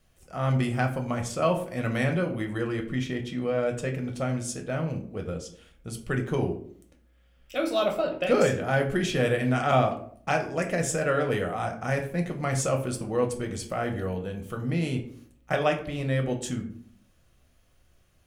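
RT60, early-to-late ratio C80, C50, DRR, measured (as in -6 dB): 0.55 s, 14.0 dB, 10.5 dB, 3.0 dB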